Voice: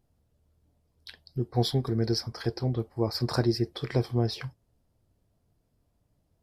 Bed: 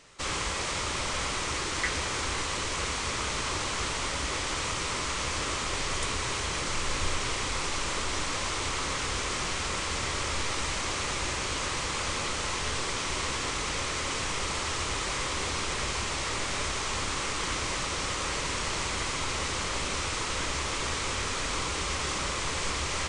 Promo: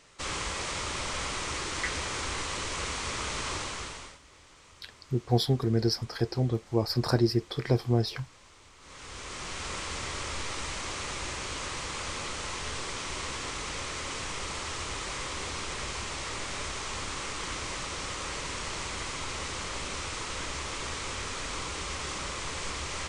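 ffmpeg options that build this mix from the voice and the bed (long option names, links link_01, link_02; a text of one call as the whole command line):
ffmpeg -i stem1.wav -i stem2.wav -filter_complex "[0:a]adelay=3750,volume=1dB[link_01];[1:a]volume=17.5dB,afade=type=out:start_time=3.53:duration=0.66:silence=0.0794328,afade=type=in:start_time=8.79:duration=0.92:silence=0.1[link_02];[link_01][link_02]amix=inputs=2:normalize=0" out.wav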